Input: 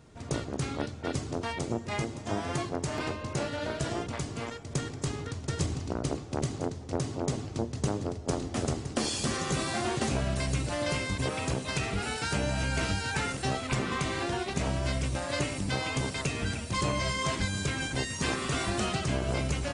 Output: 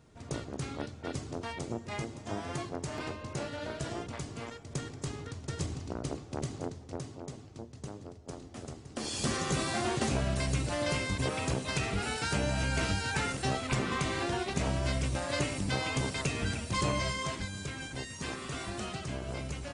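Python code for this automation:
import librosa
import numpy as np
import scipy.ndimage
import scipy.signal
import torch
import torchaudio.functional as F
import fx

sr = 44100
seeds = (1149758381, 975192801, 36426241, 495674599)

y = fx.gain(x, sr, db=fx.line((6.71, -5.0), (7.33, -13.0), (8.83, -13.0), (9.24, -1.0), (16.96, -1.0), (17.49, -8.0)))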